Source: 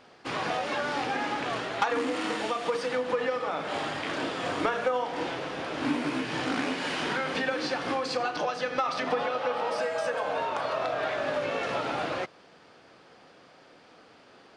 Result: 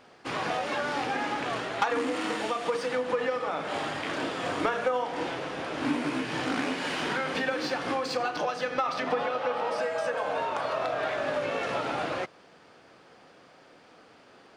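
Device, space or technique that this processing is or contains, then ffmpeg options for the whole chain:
exciter from parts: -filter_complex "[0:a]asplit=2[link_01][link_02];[link_02]highpass=2300,asoftclip=type=tanh:threshold=-38.5dB,highpass=4900,volume=-8dB[link_03];[link_01][link_03]amix=inputs=2:normalize=0,asettb=1/sr,asplit=3[link_04][link_05][link_06];[link_04]atrim=end=8.744[link_07];[link_05]atrim=start=8.74:end=10.2,asetpts=PTS-STARTPTS,afade=type=in:duration=0.004:curve=qsin,afade=type=out:start_time=1.456:duration=0.004:curve=qsin,highshelf=frequency=7400:gain=-5.5[link_08];[link_06]atrim=start=10.196[link_09];[link_07][link_08]acrossfade=duration=0.004:curve1=hsin:curve2=qsin[link_10];[link_10][link_09]acrossfade=duration=0.004:curve1=qsin:curve2=hsin"

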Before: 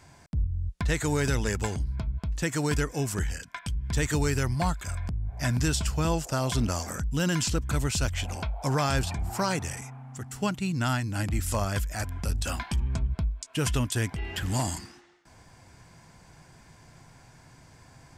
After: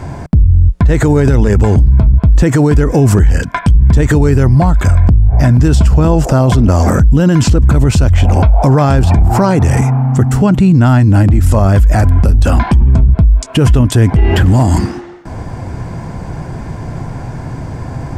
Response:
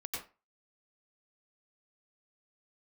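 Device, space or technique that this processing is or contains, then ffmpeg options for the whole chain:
mastering chain: -af "equalizer=frequency=160:width_type=o:width=0.21:gain=-2.5,acompressor=threshold=-28dB:ratio=6,tiltshelf=frequency=1400:gain=10,alimiter=level_in=23.5dB:limit=-1dB:release=50:level=0:latency=1,volume=-1dB"

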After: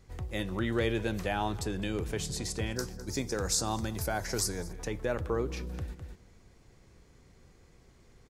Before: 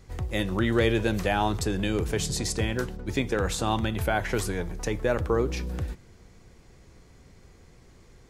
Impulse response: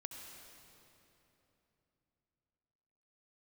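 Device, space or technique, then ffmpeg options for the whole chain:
ducked delay: -filter_complex "[0:a]asplit=3[link_01][link_02][link_03];[link_02]adelay=206,volume=-5.5dB[link_04];[link_03]apad=whole_len=374729[link_05];[link_04][link_05]sidechaincompress=threshold=-44dB:ratio=8:attack=16:release=113[link_06];[link_01][link_06]amix=inputs=2:normalize=0,asettb=1/sr,asplit=3[link_07][link_08][link_09];[link_07]atrim=end=2.764[link_10];[link_08]atrim=start=2.76:end=4.73,asetpts=PTS-STARTPTS,afade=type=in:duration=0.004:curve=qsin,afade=type=out:start_time=1.966:duration=0.004:curve=qsin,highshelf=frequency=4000:width_type=q:width=3:gain=8.5[link_11];[link_09]atrim=start=4.726[link_12];[link_10][link_11]acrossfade=duration=0.004:curve1=hsin:curve2=qsin[link_13];[link_13][link_12]acrossfade=duration=0.004:curve1=qsin:curve2=hsin,volume=-6.5dB"

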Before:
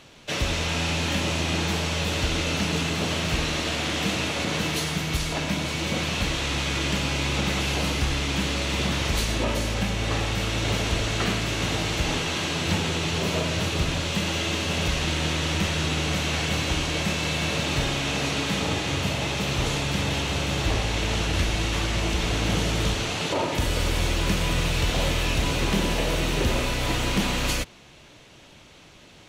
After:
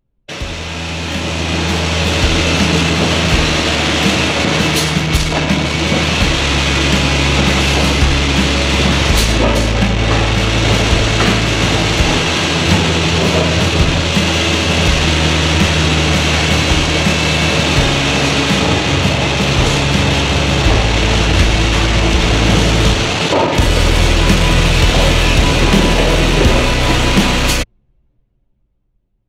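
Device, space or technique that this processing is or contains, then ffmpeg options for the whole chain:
voice memo with heavy noise removal: -af "anlmdn=63.1,dynaudnorm=framelen=150:gausssize=21:maxgain=11.5dB,volume=2.5dB"

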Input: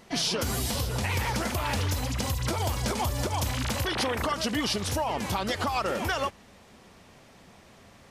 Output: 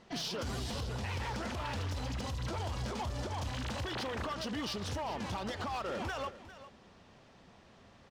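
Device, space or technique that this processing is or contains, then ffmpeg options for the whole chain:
limiter into clipper: -af "lowpass=5200,equalizer=frequency=2200:width_type=o:width=0.26:gain=-4.5,alimiter=limit=-22dB:level=0:latency=1:release=48,asoftclip=type=hard:threshold=-27.5dB,aecho=1:1:402:0.188,volume=-5.5dB"

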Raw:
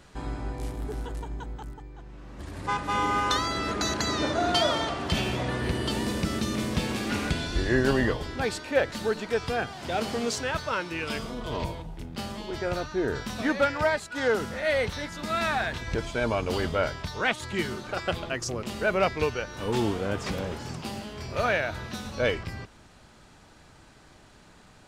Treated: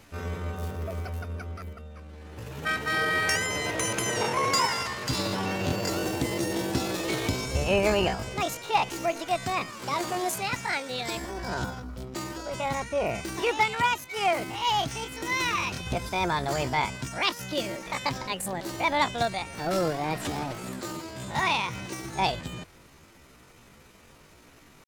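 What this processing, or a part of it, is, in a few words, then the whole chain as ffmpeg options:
chipmunk voice: -filter_complex "[0:a]asetrate=68011,aresample=44100,atempo=0.64842,asettb=1/sr,asplit=3[link_01][link_02][link_03];[link_01]atrim=end=4.664[link_04];[link_02]atrim=start=4.66:end=5.19,asetpts=PTS-STARTPTS,afade=type=in:duration=0.004:curve=qsin,afade=type=out:start_time=0.526:duration=0.004:curve=qsin,equalizer=frequency=400:width=0.53:gain=-5.5[link_05];[link_03]atrim=start=5.186[link_06];[link_04][link_05]acrossfade=duration=0.004:curve1=hsin:curve2=qsin[link_07];[link_07][link_06]acrossfade=duration=0.004:curve1=qsin:curve2=hsin"

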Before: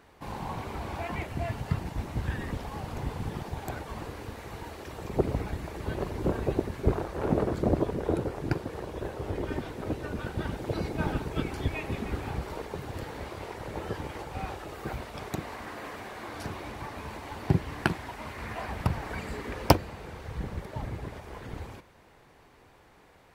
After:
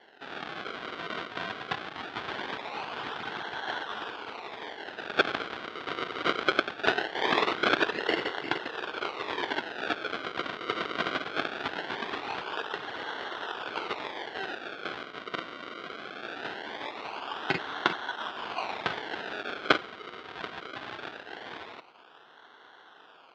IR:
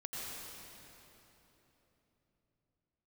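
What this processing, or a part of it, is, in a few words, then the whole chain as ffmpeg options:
circuit-bent sampling toy: -af "acrusher=samples=35:mix=1:aa=0.000001:lfo=1:lforange=35:lforate=0.21,highpass=530,equalizer=frequency=550:width_type=q:width=4:gain=-6,equalizer=frequency=1500:width_type=q:width=4:gain=6,equalizer=frequency=3400:width_type=q:width=4:gain=5,lowpass=frequency=4100:width=0.5412,lowpass=frequency=4100:width=1.3066,volume=6dB"

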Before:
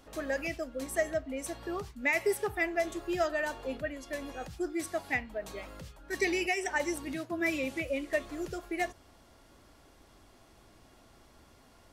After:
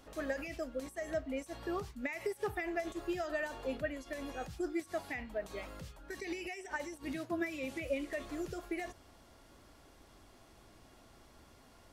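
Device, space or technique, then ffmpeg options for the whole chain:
de-esser from a sidechain: -filter_complex "[0:a]asplit=2[link_01][link_02];[link_02]highpass=5600,apad=whole_len=525969[link_03];[link_01][link_03]sidechaincompress=threshold=-53dB:ratio=12:attack=2.2:release=53,volume=-1dB"

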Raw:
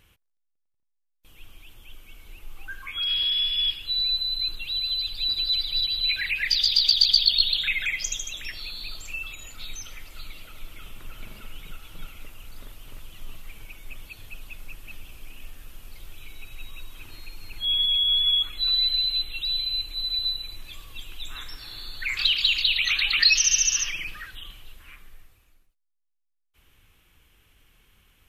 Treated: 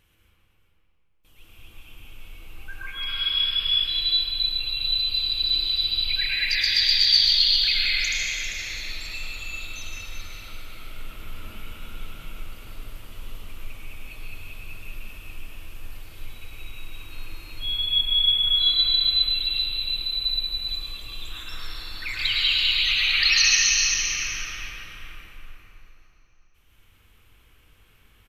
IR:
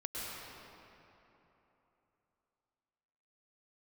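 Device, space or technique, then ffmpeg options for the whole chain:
cave: -filter_complex "[0:a]aecho=1:1:394:0.398[link_01];[1:a]atrim=start_sample=2205[link_02];[link_01][link_02]afir=irnorm=-1:irlink=0"

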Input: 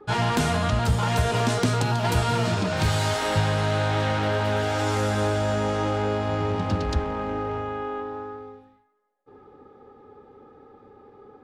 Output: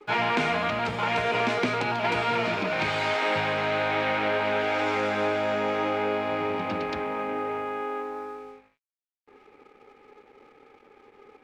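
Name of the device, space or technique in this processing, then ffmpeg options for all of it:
pocket radio on a weak battery: -af "highpass=270,lowpass=3400,aeval=exprs='sgn(val(0))*max(abs(val(0))-0.00141,0)':channel_layout=same,equalizer=frequency=2300:width_type=o:width=0.31:gain=11"

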